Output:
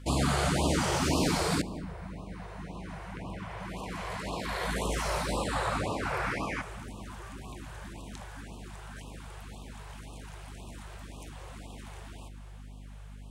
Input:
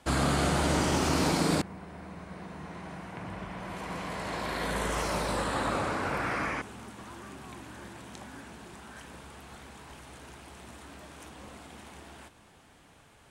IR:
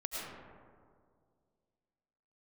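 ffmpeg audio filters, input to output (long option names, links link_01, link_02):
-filter_complex "[0:a]aeval=exprs='val(0)+0.00562*(sin(2*PI*50*n/s)+sin(2*PI*2*50*n/s)/2+sin(2*PI*3*50*n/s)/3+sin(2*PI*4*50*n/s)/4+sin(2*PI*5*50*n/s)/5)':channel_layout=same,asplit=2[link_01][link_02];[1:a]atrim=start_sample=2205,lowshelf=frequency=130:gain=11,adelay=72[link_03];[link_02][link_03]afir=irnorm=-1:irlink=0,volume=-19dB[link_04];[link_01][link_04]amix=inputs=2:normalize=0,afftfilt=real='re*(1-between(b*sr/1024,220*pow(1800/220,0.5+0.5*sin(2*PI*1.9*pts/sr))/1.41,220*pow(1800/220,0.5+0.5*sin(2*PI*1.9*pts/sr))*1.41))':imag='im*(1-between(b*sr/1024,220*pow(1800/220,0.5+0.5*sin(2*PI*1.9*pts/sr))/1.41,220*pow(1800/220,0.5+0.5*sin(2*PI*1.9*pts/sr))*1.41))':win_size=1024:overlap=0.75"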